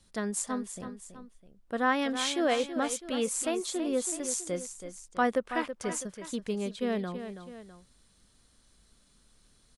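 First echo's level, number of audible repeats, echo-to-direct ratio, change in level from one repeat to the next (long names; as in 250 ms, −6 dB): −10.0 dB, 2, −9.0 dB, −6.0 dB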